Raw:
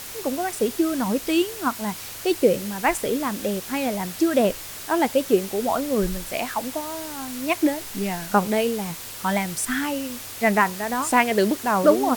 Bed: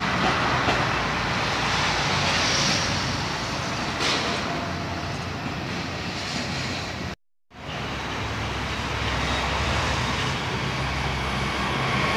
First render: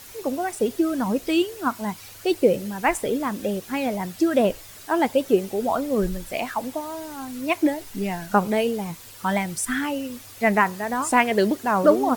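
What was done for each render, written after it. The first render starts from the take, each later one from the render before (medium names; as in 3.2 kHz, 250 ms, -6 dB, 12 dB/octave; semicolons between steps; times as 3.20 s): noise reduction 9 dB, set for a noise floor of -37 dBFS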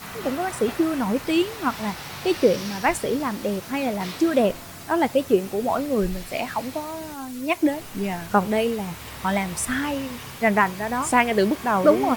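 add bed -13.5 dB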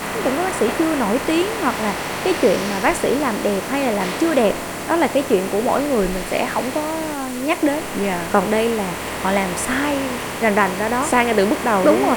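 spectral levelling over time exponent 0.6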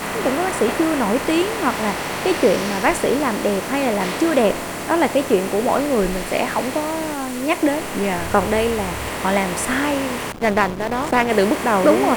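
8.18–9.09 s: resonant low shelf 130 Hz +8 dB, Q 1.5; 10.32–11.30 s: hysteresis with a dead band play -15.5 dBFS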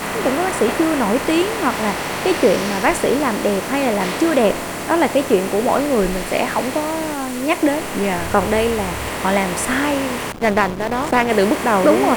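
trim +1.5 dB; peak limiter -3 dBFS, peak gain reduction 1.5 dB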